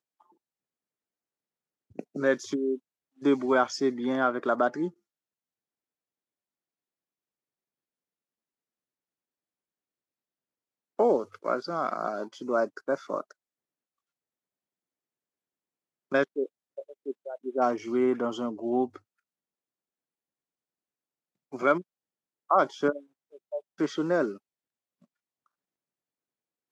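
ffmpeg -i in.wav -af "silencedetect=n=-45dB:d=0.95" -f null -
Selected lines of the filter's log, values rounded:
silence_start: 0.00
silence_end: 1.96 | silence_duration: 1.96
silence_start: 4.90
silence_end: 10.99 | silence_duration: 6.09
silence_start: 13.31
silence_end: 16.12 | silence_duration: 2.80
silence_start: 18.97
silence_end: 21.53 | silence_duration: 2.56
silence_start: 24.37
silence_end: 26.72 | silence_duration: 2.35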